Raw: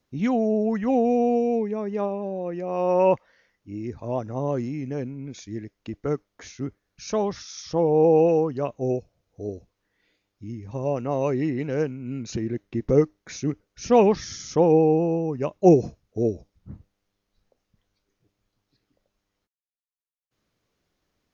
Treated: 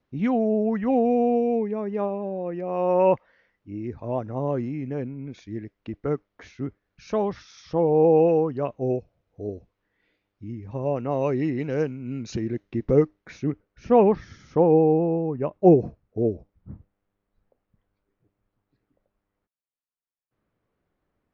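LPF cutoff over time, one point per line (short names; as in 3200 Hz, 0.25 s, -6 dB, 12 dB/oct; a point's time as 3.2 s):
10.92 s 2900 Hz
11.55 s 5800 Hz
12.44 s 5800 Hz
12.93 s 3400 Hz
14 s 1700 Hz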